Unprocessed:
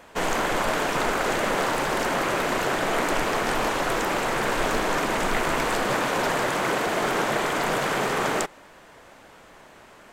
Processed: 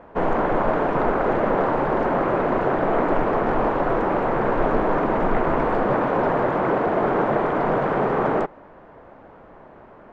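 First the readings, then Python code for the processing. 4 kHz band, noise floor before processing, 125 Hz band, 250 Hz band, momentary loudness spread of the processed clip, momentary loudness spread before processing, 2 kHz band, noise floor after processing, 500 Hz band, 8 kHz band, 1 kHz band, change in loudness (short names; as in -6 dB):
under -10 dB, -50 dBFS, +6.0 dB, +6.0 dB, 1 LU, 1 LU, -4.0 dB, -47 dBFS, +5.5 dB, under -25 dB, +3.0 dB, +3.0 dB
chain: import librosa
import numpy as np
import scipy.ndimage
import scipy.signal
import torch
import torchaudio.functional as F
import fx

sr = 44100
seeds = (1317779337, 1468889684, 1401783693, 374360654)

y = scipy.signal.sosfilt(scipy.signal.butter(2, 1000.0, 'lowpass', fs=sr, output='sos'), x)
y = y * librosa.db_to_amplitude(6.0)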